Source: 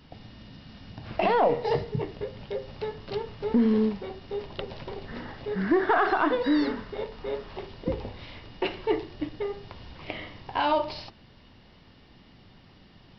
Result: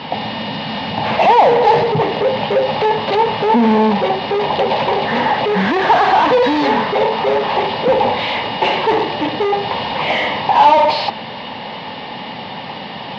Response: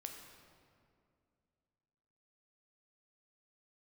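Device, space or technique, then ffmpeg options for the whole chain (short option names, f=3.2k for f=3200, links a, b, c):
overdrive pedal into a guitar cabinet: -filter_complex "[0:a]asplit=2[a][b];[b]highpass=f=720:p=1,volume=34dB,asoftclip=type=tanh:threshold=-13dB[c];[a][c]amix=inputs=2:normalize=0,lowpass=f=4.1k:p=1,volume=-6dB,highpass=100,equalizer=f=150:t=q:w=4:g=3,equalizer=f=220:t=q:w=4:g=4,equalizer=f=340:t=q:w=4:g=-6,equalizer=f=520:t=q:w=4:g=5,equalizer=f=860:t=q:w=4:g=10,equalizer=f=1.4k:t=q:w=4:g=-8,lowpass=f=4.3k:w=0.5412,lowpass=f=4.3k:w=1.3066,volume=4dB"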